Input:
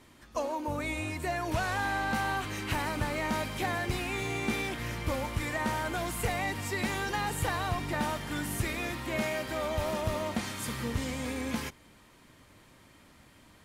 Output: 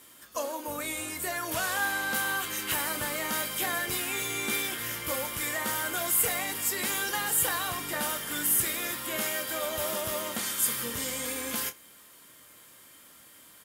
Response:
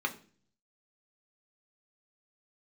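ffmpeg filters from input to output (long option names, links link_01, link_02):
-filter_complex "[0:a]aemphasis=mode=production:type=riaa,asplit=2[link_01][link_02];[link_02]adelay=25,volume=-11dB[link_03];[link_01][link_03]amix=inputs=2:normalize=0,asplit=2[link_04][link_05];[1:a]atrim=start_sample=2205,asetrate=74970,aresample=44100[link_06];[link_05][link_06]afir=irnorm=-1:irlink=0,volume=-8.5dB[link_07];[link_04][link_07]amix=inputs=2:normalize=0"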